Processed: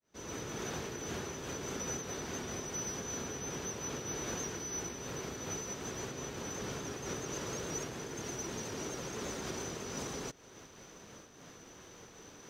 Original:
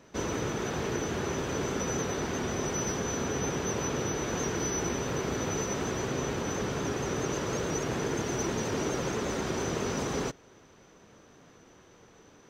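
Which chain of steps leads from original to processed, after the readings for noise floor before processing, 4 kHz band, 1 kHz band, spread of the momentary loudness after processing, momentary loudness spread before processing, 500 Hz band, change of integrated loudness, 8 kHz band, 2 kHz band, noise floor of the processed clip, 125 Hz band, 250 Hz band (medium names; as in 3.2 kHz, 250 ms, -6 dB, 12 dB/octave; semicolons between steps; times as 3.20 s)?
-57 dBFS, -5.5 dB, -9.5 dB, 15 LU, 1 LU, -10.0 dB, -8.0 dB, -4.0 dB, -8.5 dB, -55 dBFS, -10.5 dB, -10.0 dB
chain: fade-in on the opening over 1.14 s; compression 6:1, threshold -41 dBFS, peak gain reduction 13 dB; treble shelf 3.7 kHz +9 dB; band-stop 7.6 kHz, Q 26; random flutter of the level, depth 60%; trim +4 dB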